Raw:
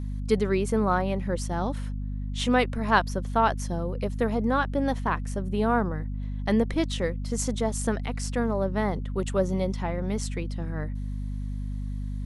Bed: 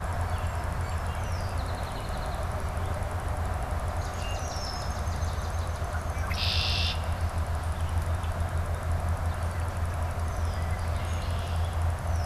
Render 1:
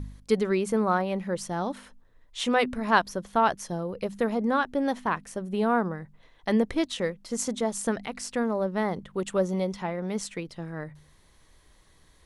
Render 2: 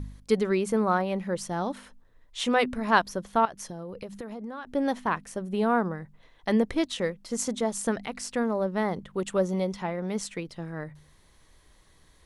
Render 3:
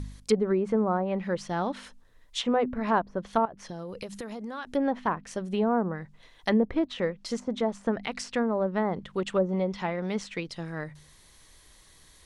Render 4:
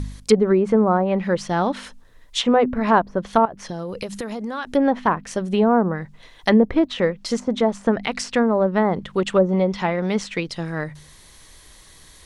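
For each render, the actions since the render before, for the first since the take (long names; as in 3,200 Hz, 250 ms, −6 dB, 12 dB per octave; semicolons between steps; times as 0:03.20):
hum removal 50 Hz, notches 5
0:03.45–0:04.67: downward compressor 8 to 1, threshold −34 dBFS
high-shelf EQ 2,400 Hz +10 dB; treble cut that deepens with the level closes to 780 Hz, closed at −20 dBFS
level +8.5 dB; brickwall limiter −3 dBFS, peak gain reduction 0.5 dB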